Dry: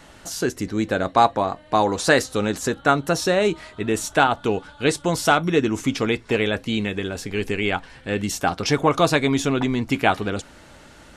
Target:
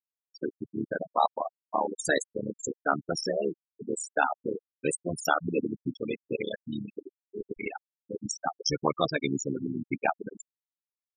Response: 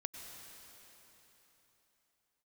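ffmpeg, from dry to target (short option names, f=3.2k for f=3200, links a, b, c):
-af "tremolo=f=74:d=1,aemphasis=mode=production:type=75fm,afftfilt=real='re*gte(hypot(re,im),0.2)':imag='im*gte(hypot(re,im),0.2)':win_size=1024:overlap=0.75,volume=-4dB"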